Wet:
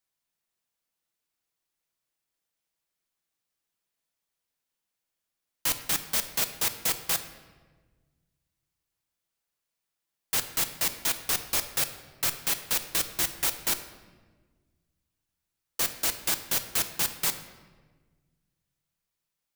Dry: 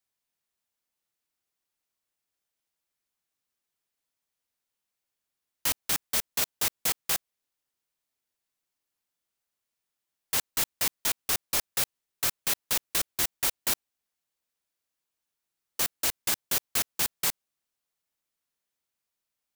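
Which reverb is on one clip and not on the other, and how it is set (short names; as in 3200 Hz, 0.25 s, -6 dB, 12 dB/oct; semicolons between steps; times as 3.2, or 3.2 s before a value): shoebox room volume 1200 m³, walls mixed, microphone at 0.69 m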